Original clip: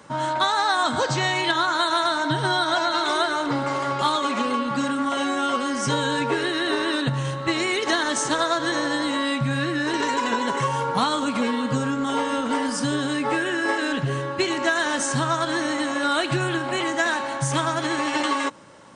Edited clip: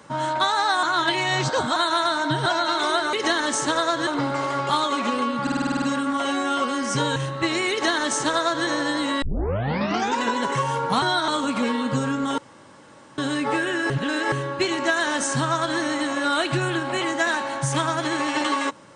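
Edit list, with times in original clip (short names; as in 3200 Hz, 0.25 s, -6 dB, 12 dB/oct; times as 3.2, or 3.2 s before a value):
0.83–1.76 reverse
2.46–2.72 move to 11.07
4.74 stutter 0.05 s, 9 plays
6.08–7.21 cut
7.76–8.7 copy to 3.39
9.27 tape start 0.98 s
12.17–12.97 room tone
13.69–14.11 reverse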